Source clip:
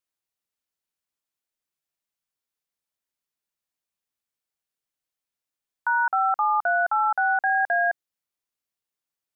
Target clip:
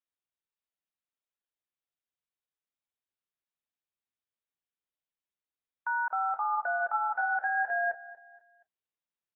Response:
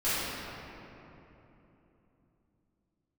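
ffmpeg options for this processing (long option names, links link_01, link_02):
-af "aecho=1:1:237|474|711:0.126|0.0491|0.0191,volume=-8dB" -ar 24000 -c:a aac -b:a 16k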